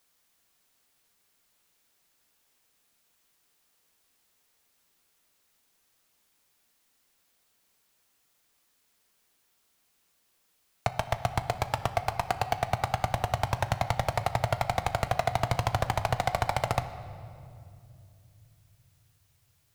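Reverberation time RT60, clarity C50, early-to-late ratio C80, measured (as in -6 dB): 2.5 s, 12.0 dB, 13.0 dB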